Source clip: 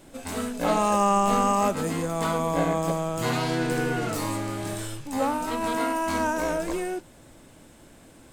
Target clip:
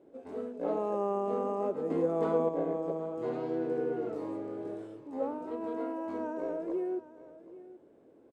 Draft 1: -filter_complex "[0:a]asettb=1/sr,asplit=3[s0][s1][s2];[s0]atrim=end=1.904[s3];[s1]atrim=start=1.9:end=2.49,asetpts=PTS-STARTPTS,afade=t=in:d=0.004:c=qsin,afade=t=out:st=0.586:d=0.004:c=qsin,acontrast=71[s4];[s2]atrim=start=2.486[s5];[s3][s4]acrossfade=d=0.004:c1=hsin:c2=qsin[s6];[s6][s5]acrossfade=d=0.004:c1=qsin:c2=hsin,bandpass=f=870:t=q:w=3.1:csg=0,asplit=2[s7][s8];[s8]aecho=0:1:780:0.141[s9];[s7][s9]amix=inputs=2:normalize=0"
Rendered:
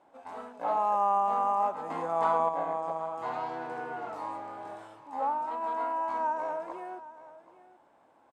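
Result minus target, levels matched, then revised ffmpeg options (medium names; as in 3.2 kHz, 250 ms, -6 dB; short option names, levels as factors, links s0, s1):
1 kHz band +9.5 dB
-filter_complex "[0:a]asettb=1/sr,asplit=3[s0][s1][s2];[s0]atrim=end=1.904[s3];[s1]atrim=start=1.9:end=2.49,asetpts=PTS-STARTPTS,afade=t=in:d=0.004:c=qsin,afade=t=out:st=0.586:d=0.004:c=qsin,acontrast=71[s4];[s2]atrim=start=2.486[s5];[s3][s4]acrossfade=d=0.004:c1=hsin:c2=qsin[s6];[s6][s5]acrossfade=d=0.004:c1=qsin:c2=hsin,bandpass=f=420:t=q:w=3.1:csg=0,asplit=2[s7][s8];[s8]aecho=0:1:780:0.141[s9];[s7][s9]amix=inputs=2:normalize=0"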